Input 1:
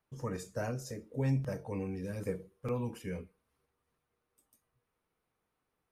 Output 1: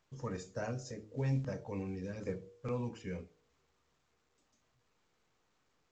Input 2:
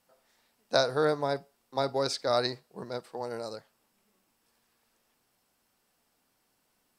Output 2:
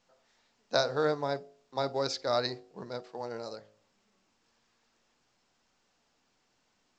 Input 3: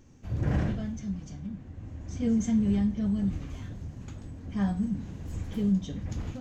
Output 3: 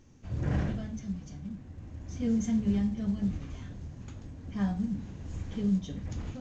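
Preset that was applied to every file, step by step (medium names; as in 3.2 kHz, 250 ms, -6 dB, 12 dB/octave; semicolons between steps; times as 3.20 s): de-hum 53.11 Hz, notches 15; trim -2 dB; µ-law 128 kbps 16 kHz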